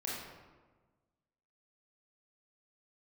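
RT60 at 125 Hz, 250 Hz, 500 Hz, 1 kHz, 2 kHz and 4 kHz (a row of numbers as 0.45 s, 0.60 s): 1.7 s, 1.6 s, 1.4 s, 1.3 s, 1.0 s, 0.75 s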